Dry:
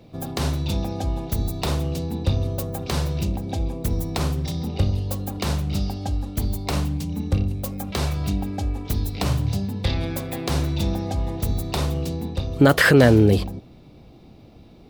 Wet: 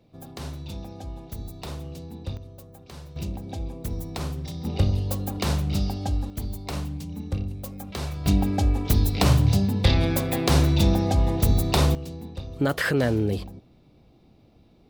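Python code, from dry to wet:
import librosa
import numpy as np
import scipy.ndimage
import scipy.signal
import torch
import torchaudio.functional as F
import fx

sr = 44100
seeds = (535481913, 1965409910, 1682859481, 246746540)

y = fx.gain(x, sr, db=fx.steps((0.0, -11.5), (2.37, -18.0), (3.16, -7.0), (4.65, -0.5), (6.3, -7.0), (8.26, 4.0), (11.95, -9.0)))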